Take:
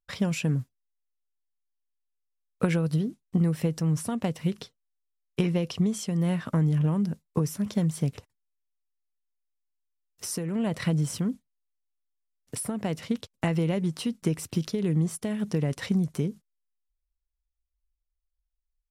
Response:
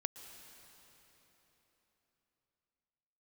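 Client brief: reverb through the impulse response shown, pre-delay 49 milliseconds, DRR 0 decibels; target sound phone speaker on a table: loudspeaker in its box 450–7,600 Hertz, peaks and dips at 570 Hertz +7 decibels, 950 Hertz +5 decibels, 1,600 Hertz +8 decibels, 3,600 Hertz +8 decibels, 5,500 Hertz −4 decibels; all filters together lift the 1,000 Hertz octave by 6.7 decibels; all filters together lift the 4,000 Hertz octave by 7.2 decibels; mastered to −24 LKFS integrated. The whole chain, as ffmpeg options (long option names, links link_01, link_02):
-filter_complex "[0:a]equalizer=frequency=1000:width_type=o:gain=3.5,equalizer=frequency=4000:width_type=o:gain=5,asplit=2[link_01][link_02];[1:a]atrim=start_sample=2205,adelay=49[link_03];[link_02][link_03]afir=irnorm=-1:irlink=0,volume=1dB[link_04];[link_01][link_04]amix=inputs=2:normalize=0,highpass=frequency=450:width=0.5412,highpass=frequency=450:width=1.3066,equalizer=frequency=570:width_type=q:width=4:gain=7,equalizer=frequency=950:width_type=q:width=4:gain=5,equalizer=frequency=1600:width_type=q:width=4:gain=8,equalizer=frequency=3600:width_type=q:width=4:gain=8,equalizer=frequency=5500:width_type=q:width=4:gain=-4,lowpass=frequency=7600:width=0.5412,lowpass=frequency=7600:width=1.3066,volume=6.5dB"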